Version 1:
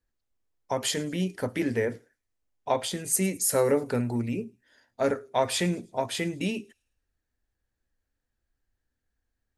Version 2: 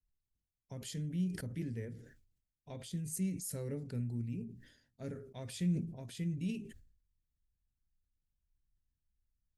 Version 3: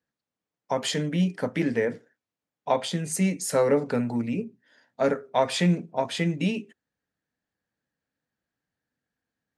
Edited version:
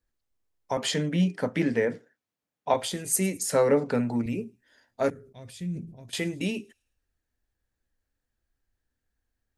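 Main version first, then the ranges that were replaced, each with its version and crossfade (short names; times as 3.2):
1
0.77–2.74 from 3
3.43–4.26 from 3
5.1–6.13 from 2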